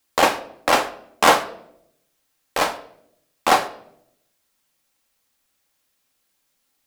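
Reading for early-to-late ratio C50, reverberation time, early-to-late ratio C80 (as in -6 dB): 15.0 dB, 0.75 s, 17.5 dB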